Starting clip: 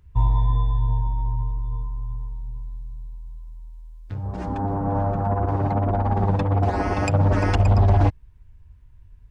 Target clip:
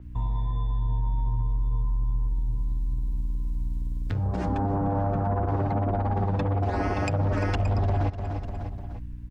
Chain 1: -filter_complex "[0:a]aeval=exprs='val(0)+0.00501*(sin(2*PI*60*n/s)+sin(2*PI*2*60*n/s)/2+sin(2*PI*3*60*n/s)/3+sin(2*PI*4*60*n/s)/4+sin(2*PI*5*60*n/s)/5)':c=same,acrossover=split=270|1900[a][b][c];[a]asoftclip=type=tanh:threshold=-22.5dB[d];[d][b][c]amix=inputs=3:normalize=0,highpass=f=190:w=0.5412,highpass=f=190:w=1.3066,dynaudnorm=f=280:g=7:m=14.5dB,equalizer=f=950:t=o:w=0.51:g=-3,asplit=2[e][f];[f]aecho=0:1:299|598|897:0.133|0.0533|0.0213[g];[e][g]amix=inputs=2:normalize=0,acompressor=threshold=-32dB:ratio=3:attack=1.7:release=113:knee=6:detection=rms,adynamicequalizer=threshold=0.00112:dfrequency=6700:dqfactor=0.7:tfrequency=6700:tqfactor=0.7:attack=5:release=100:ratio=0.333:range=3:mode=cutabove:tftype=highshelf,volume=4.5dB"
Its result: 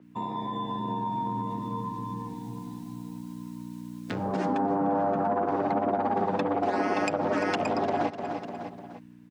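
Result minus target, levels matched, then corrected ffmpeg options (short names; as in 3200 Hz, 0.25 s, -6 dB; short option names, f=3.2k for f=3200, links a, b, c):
soft clip: distortion +10 dB; 250 Hz band +3.5 dB
-filter_complex "[0:a]aeval=exprs='val(0)+0.00501*(sin(2*PI*60*n/s)+sin(2*PI*2*60*n/s)/2+sin(2*PI*3*60*n/s)/3+sin(2*PI*4*60*n/s)/4+sin(2*PI*5*60*n/s)/5)':c=same,acrossover=split=270|1900[a][b][c];[a]asoftclip=type=tanh:threshold=-13dB[d];[d][b][c]amix=inputs=3:normalize=0,dynaudnorm=f=280:g=7:m=14.5dB,equalizer=f=950:t=o:w=0.51:g=-3,asplit=2[e][f];[f]aecho=0:1:299|598|897:0.133|0.0533|0.0213[g];[e][g]amix=inputs=2:normalize=0,acompressor=threshold=-32dB:ratio=3:attack=1.7:release=113:knee=6:detection=rms,adynamicequalizer=threshold=0.00112:dfrequency=6700:dqfactor=0.7:tfrequency=6700:tqfactor=0.7:attack=5:release=100:ratio=0.333:range=3:mode=cutabove:tftype=highshelf,volume=4.5dB"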